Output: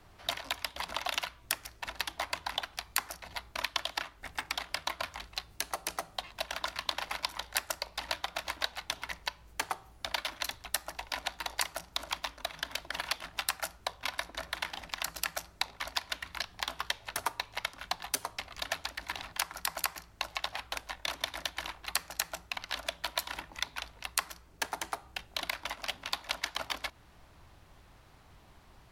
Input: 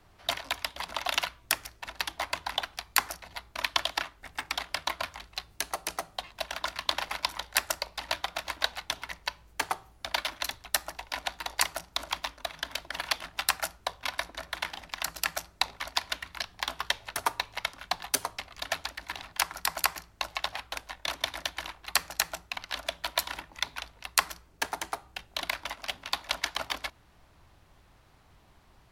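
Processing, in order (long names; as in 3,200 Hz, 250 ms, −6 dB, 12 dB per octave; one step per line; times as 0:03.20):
downward compressor 2 to 1, threshold −36 dBFS, peak gain reduction 10.5 dB
level +2 dB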